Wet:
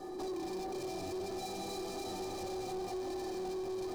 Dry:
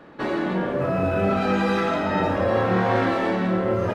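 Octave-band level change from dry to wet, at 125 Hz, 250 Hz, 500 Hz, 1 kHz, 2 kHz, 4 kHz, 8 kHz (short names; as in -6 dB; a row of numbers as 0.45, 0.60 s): -25.5 dB, -17.5 dB, -16.0 dB, -17.5 dB, -25.0 dB, -9.5 dB, n/a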